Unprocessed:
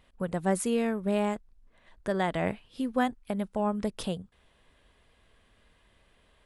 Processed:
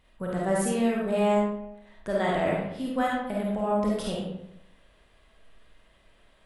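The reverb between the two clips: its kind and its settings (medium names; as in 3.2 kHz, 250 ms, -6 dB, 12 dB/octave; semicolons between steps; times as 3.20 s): algorithmic reverb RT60 0.84 s, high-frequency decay 0.65×, pre-delay 10 ms, DRR -4.5 dB; trim -2.5 dB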